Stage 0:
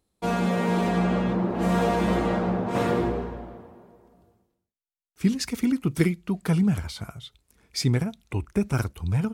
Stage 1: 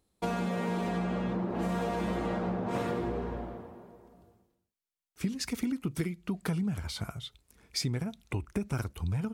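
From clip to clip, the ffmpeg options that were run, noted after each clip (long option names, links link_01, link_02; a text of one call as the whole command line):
ffmpeg -i in.wav -af "acompressor=threshold=-29dB:ratio=6" out.wav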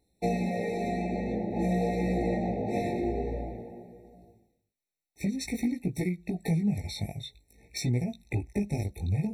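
ffmpeg -i in.wav -af "volume=24.5dB,asoftclip=hard,volume=-24.5dB,flanger=delay=16.5:depth=3.6:speed=0.5,afftfilt=real='re*eq(mod(floor(b*sr/1024/890),2),0)':imag='im*eq(mod(floor(b*sr/1024/890),2),0)':win_size=1024:overlap=0.75,volume=6dB" out.wav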